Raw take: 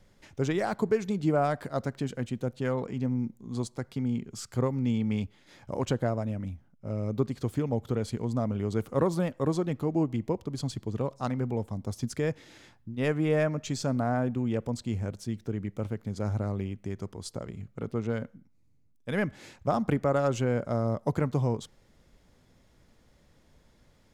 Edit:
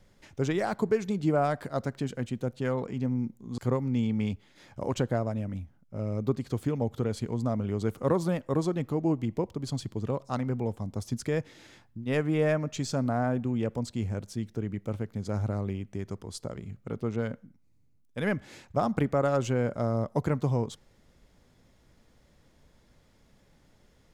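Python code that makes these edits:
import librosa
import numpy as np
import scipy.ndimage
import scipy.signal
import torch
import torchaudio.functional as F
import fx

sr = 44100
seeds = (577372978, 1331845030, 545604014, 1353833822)

y = fx.edit(x, sr, fx.cut(start_s=3.58, length_s=0.91), tone=tone)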